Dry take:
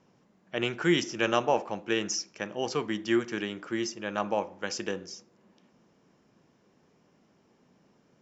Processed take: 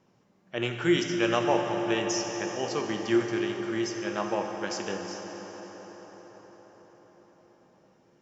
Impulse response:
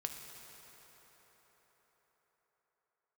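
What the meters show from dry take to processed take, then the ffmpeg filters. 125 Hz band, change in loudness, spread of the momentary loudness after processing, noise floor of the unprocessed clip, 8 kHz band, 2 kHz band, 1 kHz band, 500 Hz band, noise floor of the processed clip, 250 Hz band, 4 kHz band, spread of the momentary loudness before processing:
+2.5 dB, +1.5 dB, 17 LU, -66 dBFS, n/a, 0.0 dB, +1.0 dB, +2.0 dB, -65 dBFS, +2.5 dB, 0.0 dB, 10 LU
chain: -filter_complex "[1:a]atrim=start_sample=2205,asetrate=36603,aresample=44100[a];[0:a][a]afir=irnorm=-1:irlink=0"

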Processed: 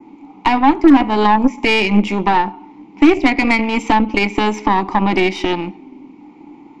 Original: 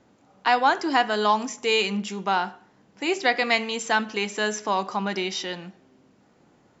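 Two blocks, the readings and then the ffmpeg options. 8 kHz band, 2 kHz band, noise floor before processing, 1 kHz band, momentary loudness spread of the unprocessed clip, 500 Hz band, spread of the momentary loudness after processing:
n/a, +6.0 dB, -60 dBFS, +8.0 dB, 8 LU, +7.5 dB, 8 LU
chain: -filter_complex "[0:a]asplit=3[a][b][c];[a]bandpass=f=300:t=q:w=8,volume=0dB[d];[b]bandpass=f=870:t=q:w=8,volume=-6dB[e];[c]bandpass=f=2.24k:t=q:w=8,volume=-9dB[f];[d][e][f]amix=inputs=3:normalize=0,adynamicequalizer=threshold=0.00158:dfrequency=3600:dqfactor=1.5:tfrequency=3600:tqfactor=1.5:attack=5:release=100:ratio=0.375:range=3:mode=cutabove:tftype=bell,acrossover=split=290[g][h];[h]acompressor=threshold=-46dB:ratio=3[i];[g][i]amix=inputs=2:normalize=0,aeval=exprs='0.0355*(cos(1*acos(clip(val(0)/0.0355,-1,1)))-cos(1*PI/2))+0.00316*(cos(6*acos(clip(val(0)/0.0355,-1,1)))-cos(6*PI/2))+0.00158*(cos(7*acos(clip(val(0)/0.0355,-1,1)))-cos(7*PI/2))':c=same,alimiter=level_in=32.5dB:limit=-1dB:release=50:level=0:latency=1,volume=-1dB"

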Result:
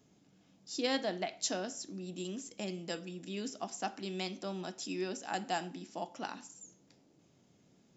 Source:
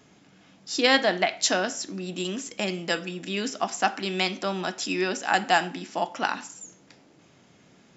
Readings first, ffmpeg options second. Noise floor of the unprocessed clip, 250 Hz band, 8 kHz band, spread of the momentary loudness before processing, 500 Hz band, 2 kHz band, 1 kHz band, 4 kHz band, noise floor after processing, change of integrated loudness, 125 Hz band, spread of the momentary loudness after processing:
-58 dBFS, -9.0 dB, n/a, 11 LU, -11.0 dB, -17.5 dB, -13.5 dB, -13.5 dB, -68 dBFS, -12.5 dB, -8.5 dB, 9 LU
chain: -af "equalizer=f=1.7k:w=0.53:g=-10,volume=-8dB"

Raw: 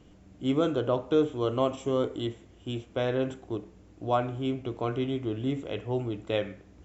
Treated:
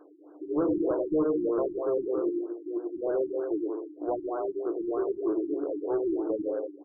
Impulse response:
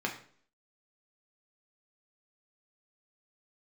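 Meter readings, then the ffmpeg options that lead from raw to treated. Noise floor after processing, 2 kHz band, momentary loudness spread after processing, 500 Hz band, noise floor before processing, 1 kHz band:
-52 dBFS, under -10 dB, 7 LU, +1.5 dB, -55 dBFS, -5.0 dB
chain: -filter_complex "[0:a]aecho=1:1:100|180|244|295.2|336.2:0.631|0.398|0.251|0.158|0.1,acrossover=split=420[a][b];[b]acompressor=threshold=-39dB:ratio=4[c];[a][c]amix=inputs=2:normalize=0,afftfilt=real='re*between(b*sr/4096,280,3000)':imag='im*between(b*sr/4096,280,3000)':win_size=4096:overlap=0.75,asoftclip=type=tanh:threshold=-27.5dB,afftfilt=real='re*lt(b*sr/1024,360*pow(1700/360,0.5+0.5*sin(2*PI*3.2*pts/sr)))':imag='im*lt(b*sr/1024,360*pow(1700/360,0.5+0.5*sin(2*PI*3.2*pts/sr)))':win_size=1024:overlap=0.75,volume=7dB"

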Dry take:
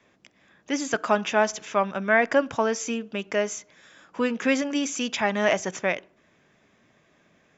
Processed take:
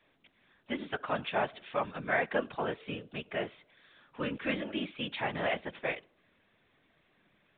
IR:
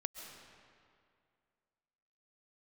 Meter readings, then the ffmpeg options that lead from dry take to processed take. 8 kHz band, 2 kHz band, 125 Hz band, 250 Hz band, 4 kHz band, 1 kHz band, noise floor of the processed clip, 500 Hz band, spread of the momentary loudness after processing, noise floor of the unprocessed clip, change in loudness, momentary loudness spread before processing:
n/a, -9.0 dB, -3.5 dB, -11.0 dB, -7.5 dB, -8.5 dB, -71 dBFS, -10.5 dB, 9 LU, -63 dBFS, -9.5 dB, 9 LU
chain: -af "afftfilt=real='hypot(re,im)*cos(2*PI*random(0))':imag='hypot(re,im)*sin(2*PI*random(1))':win_size=512:overlap=0.75,crystalizer=i=2.5:c=0,volume=-4.5dB" -ar 8000 -c:a pcm_mulaw

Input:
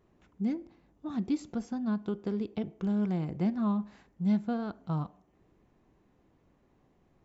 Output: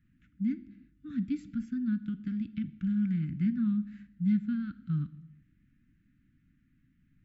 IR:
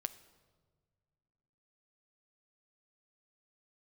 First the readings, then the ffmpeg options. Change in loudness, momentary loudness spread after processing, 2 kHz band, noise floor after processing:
0.0 dB, 9 LU, -1.5 dB, -69 dBFS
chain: -filter_complex "[0:a]asuperstop=centerf=640:order=12:qfactor=0.54,asplit=2[a][b];[1:a]atrim=start_sample=2205,afade=t=out:st=0.43:d=0.01,atrim=end_sample=19404,lowpass=2.7k[c];[b][c]afir=irnorm=-1:irlink=0,volume=9dB[d];[a][d]amix=inputs=2:normalize=0,volume=-9dB"

